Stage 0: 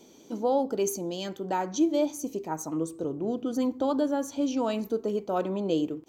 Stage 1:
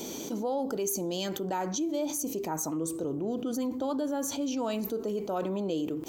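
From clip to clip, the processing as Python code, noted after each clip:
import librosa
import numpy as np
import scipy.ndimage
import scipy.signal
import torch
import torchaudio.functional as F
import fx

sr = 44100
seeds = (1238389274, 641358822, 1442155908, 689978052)

y = fx.high_shelf(x, sr, hz=8600.0, db=10.0)
y = fx.env_flatten(y, sr, amount_pct=70)
y = y * librosa.db_to_amplitude(-9.0)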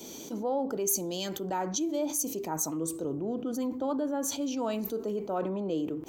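y = fx.band_widen(x, sr, depth_pct=70)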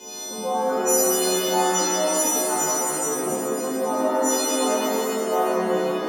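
y = fx.freq_snap(x, sr, grid_st=3)
y = fx.bandpass_q(y, sr, hz=970.0, q=0.5)
y = fx.rev_shimmer(y, sr, seeds[0], rt60_s=3.0, semitones=7, shimmer_db=-8, drr_db=-9.5)
y = y * librosa.db_to_amplitude(2.5)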